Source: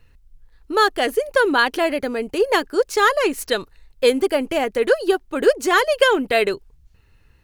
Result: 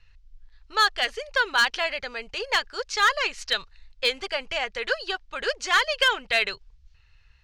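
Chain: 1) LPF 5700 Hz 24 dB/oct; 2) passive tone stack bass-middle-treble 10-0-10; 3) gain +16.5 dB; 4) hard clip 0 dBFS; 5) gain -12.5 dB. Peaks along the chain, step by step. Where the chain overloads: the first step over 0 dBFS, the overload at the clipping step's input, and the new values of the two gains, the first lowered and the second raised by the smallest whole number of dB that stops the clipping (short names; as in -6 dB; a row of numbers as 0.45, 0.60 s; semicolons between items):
-3.5, -10.0, +6.5, 0.0, -12.5 dBFS; step 3, 6.5 dB; step 3 +9.5 dB, step 5 -5.5 dB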